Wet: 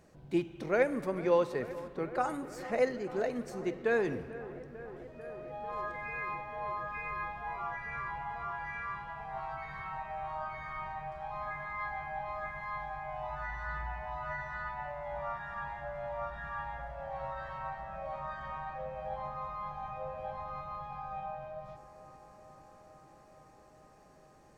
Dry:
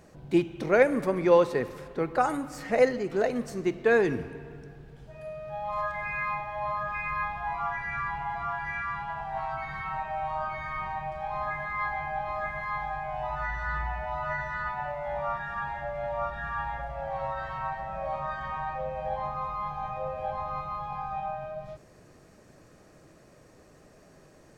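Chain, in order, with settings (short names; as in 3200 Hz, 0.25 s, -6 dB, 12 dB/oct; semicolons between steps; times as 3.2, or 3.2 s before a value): dark delay 0.445 s, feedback 80%, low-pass 2000 Hz, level -16.5 dB; gain -7 dB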